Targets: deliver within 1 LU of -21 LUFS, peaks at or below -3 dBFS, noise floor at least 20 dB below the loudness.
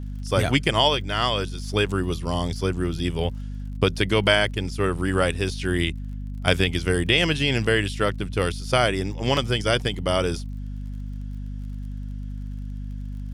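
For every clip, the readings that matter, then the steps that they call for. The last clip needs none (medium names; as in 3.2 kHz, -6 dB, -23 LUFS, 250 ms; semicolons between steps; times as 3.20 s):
tick rate 39 per s; hum 50 Hz; highest harmonic 250 Hz; hum level -29 dBFS; loudness -23.0 LUFS; peak level -2.5 dBFS; loudness target -21.0 LUFS
-> de-click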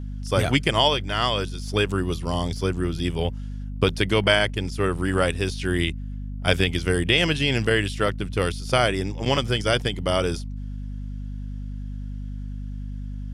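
tick rate 0.52 per s; hum 50 Hz; highest harmonic 250 Hz; hum level -29 dBFS
-> hum notches 50/100/150/200/250 Hz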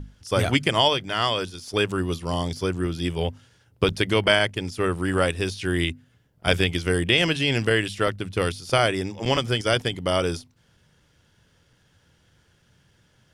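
hum not found; loudness -23.5 LUFS; peak level -3.0 dBFS; loudness target -21.0 LUFS
-> trim +2.5 dB; peak limiter -3 dBFS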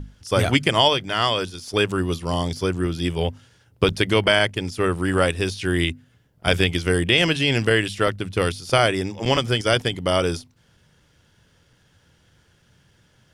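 loudness -21.0 LUFS; peak level -3.0 dBFS; noise floor -60 dBFS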